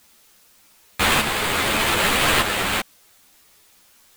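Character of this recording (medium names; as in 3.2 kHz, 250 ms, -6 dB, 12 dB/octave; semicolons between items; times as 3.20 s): aliases and images of a low sample rate 5.8 kHz, jitter 20%; tremolo saw up 0.83 Hz, depth 55%; a quantiser's noise floor 10-bit, dither triangular; a shimmering, thickened sound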